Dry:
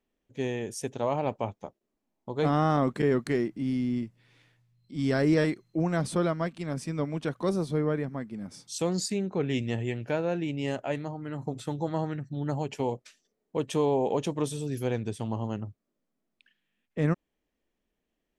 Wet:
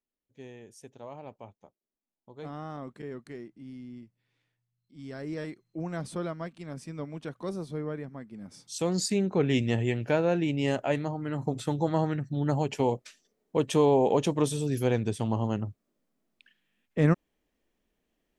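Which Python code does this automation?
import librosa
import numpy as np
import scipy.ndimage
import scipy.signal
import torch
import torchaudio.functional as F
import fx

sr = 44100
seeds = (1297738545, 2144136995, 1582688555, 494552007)

y = fx.gain(x, sr, db=fx.line((5.09, -15.0), (5.89, -7.0), (8.25, -7.0), (9.19, 3.5)))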